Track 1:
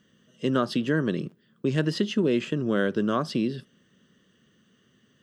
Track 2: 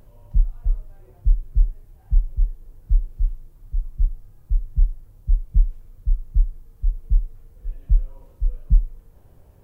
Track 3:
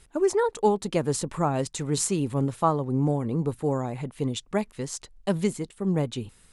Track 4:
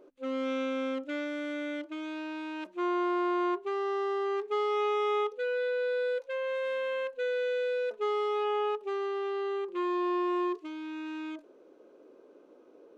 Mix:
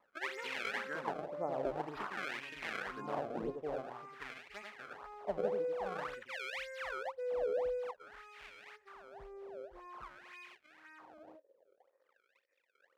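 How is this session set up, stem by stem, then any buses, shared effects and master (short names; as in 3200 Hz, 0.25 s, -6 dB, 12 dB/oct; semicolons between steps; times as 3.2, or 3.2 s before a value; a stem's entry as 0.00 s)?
-6.5 dB, 0.00 s, no send, no echo send, dry
-9.5 dB, 1.30 s, no send, no echo send, tone controls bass -2 dB, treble +10 dB
-8.0 dB, 0.00 s, no send, echo send -3.5 dB, dry
-5.5 dB, 0.00 s, no send, no echo send, band shelf 1400 Hz +10.5 dB; sample leveller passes 3; vocal tract filter e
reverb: off
echo: echo 90 ms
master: decimation with a swept rate 27×, swing 160% 1.9 Hz; LFO band-pass sine 0.5 Hz 540–2300 Hz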